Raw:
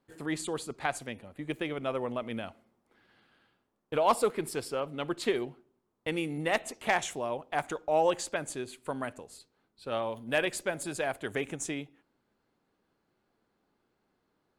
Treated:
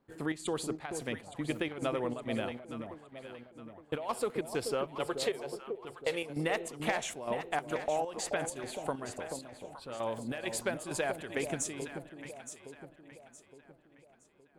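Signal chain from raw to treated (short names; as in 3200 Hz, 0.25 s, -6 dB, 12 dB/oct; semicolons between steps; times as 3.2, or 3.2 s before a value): 4.95–6.3 resonant low shelf 360 Hz -7 dB, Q 3; compressor 6:1, threshold -32 dBFS, peak gain reduction 12.5 dB; chopper 2.2 Hz, depth 65%, duty 70%; echo with dull and thin repeats by turns 0.433 s, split 820 Hz, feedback 65%, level -6 dB; mismatched tape noise reduction decoder only; gain +3 dB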